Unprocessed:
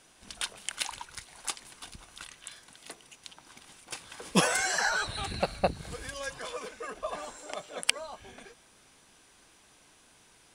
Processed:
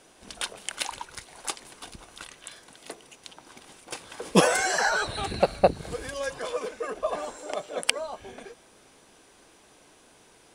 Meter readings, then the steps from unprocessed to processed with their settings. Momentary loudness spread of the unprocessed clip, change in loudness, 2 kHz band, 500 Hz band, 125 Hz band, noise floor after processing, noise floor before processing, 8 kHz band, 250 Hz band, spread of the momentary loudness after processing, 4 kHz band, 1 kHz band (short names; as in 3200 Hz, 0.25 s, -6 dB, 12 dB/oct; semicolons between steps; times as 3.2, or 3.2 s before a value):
22 LU, +4.5 dB, +2.5 dB, +8.5 dB, +3.5 dB, -57 dBFS, -61 dBFS, +1.5 dB, +5.5 dB, 21 LU, +2.0 dB, +5.5 dB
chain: bell 450 Hz +8 dB 1.9 oct; gain +1.5 dB